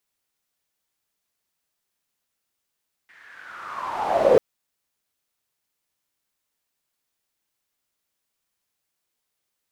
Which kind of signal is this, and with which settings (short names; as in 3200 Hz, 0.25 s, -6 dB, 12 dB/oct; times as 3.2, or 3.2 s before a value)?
swept filtered noise pink, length 1.29 s bandpass, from 1900 Hz, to 440 Hz, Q 7, linear, gain ramp +38 dB